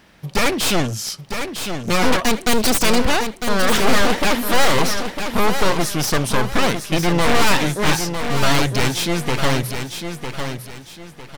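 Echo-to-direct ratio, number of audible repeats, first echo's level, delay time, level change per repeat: -7.0 dB, 3, -7.5 dB, 953 ms, -10.0 dB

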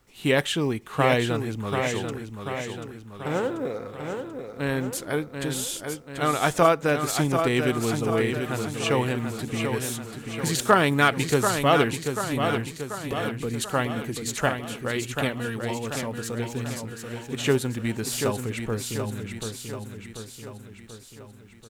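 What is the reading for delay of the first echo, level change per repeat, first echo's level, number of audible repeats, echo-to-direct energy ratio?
737 ms, -5.0 dB, -6.5 dB, 5, -5.0 dB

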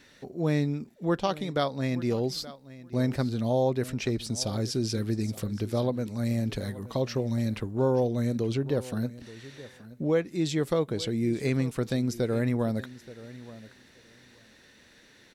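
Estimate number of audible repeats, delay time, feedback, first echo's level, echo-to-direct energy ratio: 2, 876 ms, 15%, -17.5 dB, -17.5 dB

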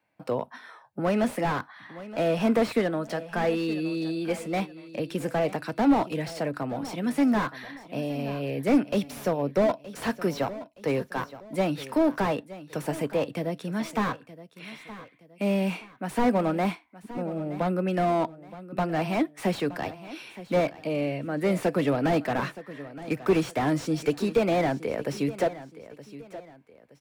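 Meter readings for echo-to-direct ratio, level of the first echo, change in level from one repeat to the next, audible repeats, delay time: -15.5 dB, -16.0 dB, -9.0 dB, 2, 920 ms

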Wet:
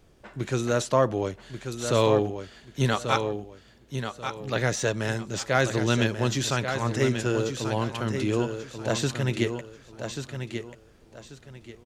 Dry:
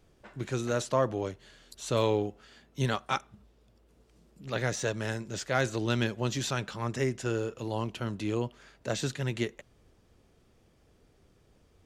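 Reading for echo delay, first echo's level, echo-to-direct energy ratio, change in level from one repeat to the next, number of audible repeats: 1137 ms, -7.5 dB, -7.0 dB, -11.5 dB, 3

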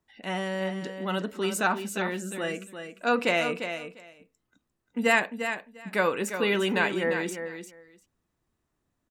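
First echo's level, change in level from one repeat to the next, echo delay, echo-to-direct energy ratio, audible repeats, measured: -8.5 dB, -16.5 dB, 349 ms, -8.5 dB, 2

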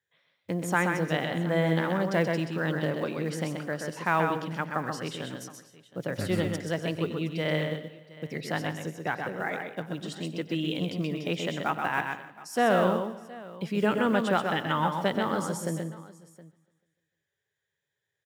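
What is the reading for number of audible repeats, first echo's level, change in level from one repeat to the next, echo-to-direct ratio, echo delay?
8, -18.5 dB, no regular repeats, -4.0 dB, 93 ms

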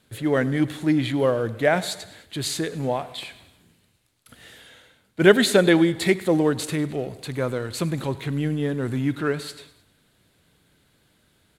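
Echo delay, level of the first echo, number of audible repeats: 101 ms, -20.0 dB, 3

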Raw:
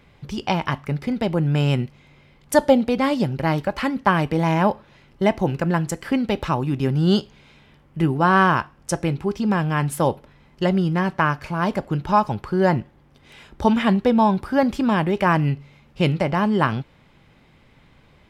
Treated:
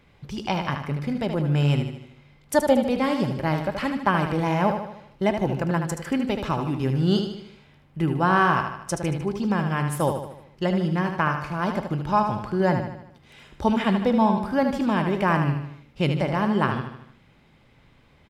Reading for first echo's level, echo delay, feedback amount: -7.0 dB, 76 ms, 51%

